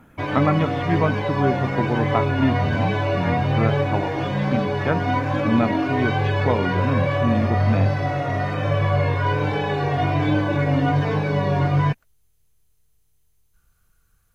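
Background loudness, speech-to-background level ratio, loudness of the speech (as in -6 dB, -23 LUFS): -22.0 LUFS, -3.5 dB, -25.5 LUFS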